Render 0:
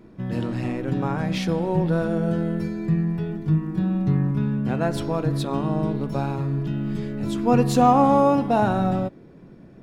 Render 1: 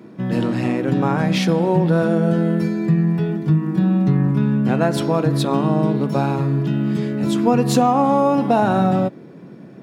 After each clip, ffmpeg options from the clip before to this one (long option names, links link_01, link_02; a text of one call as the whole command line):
ffmpeg -i in.wav -af "highpass=frequency=130:width=0.5412,highpass=frequency=130:width=1.3066,acompressor=threshold=-19dB:ratio=6,volume=7.5dB" out.wav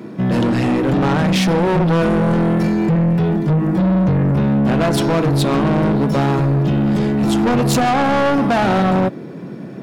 ffmpeg -i in.wav -af "asoftclip=type=tanh:threshold=-21.5dB,volume=9dB" out.wav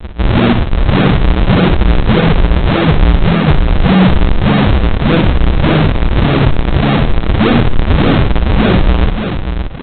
ffmpeg -i in.wav -af "aresample=8000,acrusher=samples=39:mix=1:aa=0.000001:lfo=1:lforange=62.4:lforate=1.7,aresample=44100,aecho=1:1:59|579:0.376|0.422,alimiter=level_in=7dB:limit=-1dB:release=50:level=0:latency=1,volume=-1dB" out.wav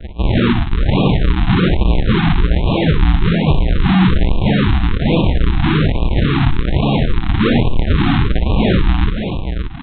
ffmpeg -i in.wav -af "afftfilt=real='re*(1-between(b*sr/1024,470*pow(1700/470,0.5+0.5*sin(2*PI*1.2*pts/sr))/1.41,470*pow(1700/470,0.5+0.5*sin(2*PI*1.2*pts/sr))*1.41))':imag='im*(1-between(b*sr/1024,470*pow(1700/470,0.5+0.5*sin(2*PI*1.2*pts/sr))/1.41,470*pow(1700/470,0.5+0.5*sin(2*PI*1.2*pts/sr))*1.41))':win_size=1024:overlap=0.75,volume=-3.5dB" out.wav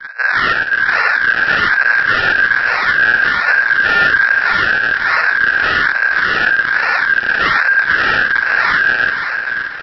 ffmpeg -i in.wav -af "equalizer=frequency=1100:width_type=o:width=0.77:gain=3.5,aeval=exprs='val(0)*sin(2*PI*1600*n/s)':channel_layout=same,aecho=1:1:484|968|1452|1936:0.251|0.105|0.0443|0.0186,volume=1.5dB" out.wav